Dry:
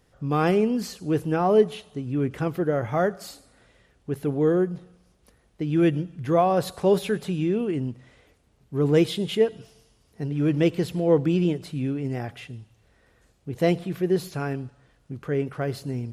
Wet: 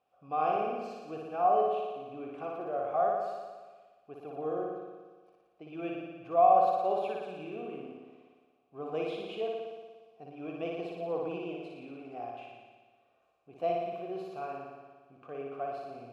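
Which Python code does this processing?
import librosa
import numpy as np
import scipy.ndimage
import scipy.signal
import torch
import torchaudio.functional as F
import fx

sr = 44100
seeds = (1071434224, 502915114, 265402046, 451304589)

y = fx.vowel_filter(x, sr, vowel='a')
y = fx.room_flutter(y, sr, wall_m=10.0, rt60_s=1.4)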